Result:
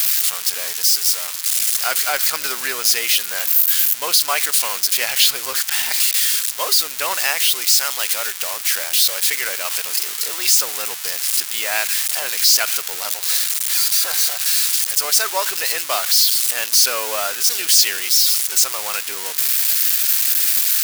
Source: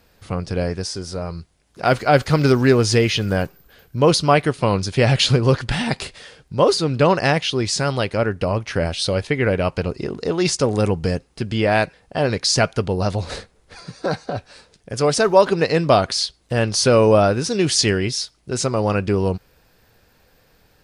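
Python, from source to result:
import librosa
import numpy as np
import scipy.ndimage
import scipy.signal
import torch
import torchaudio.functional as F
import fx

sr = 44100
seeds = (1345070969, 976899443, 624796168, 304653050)

y = x + 0.5 * 10.0 ** (-9.5 / 20.0) * np.diff(np.sign(x), prepend=np.sign(x[:1]))
y = scipy.signal.sosfilt(scipy.signal.butter(2, 1300.0, 'highpass', fs=sr, output='sos'), y)
y = y * 10.0 ** (1.0 / 20.0)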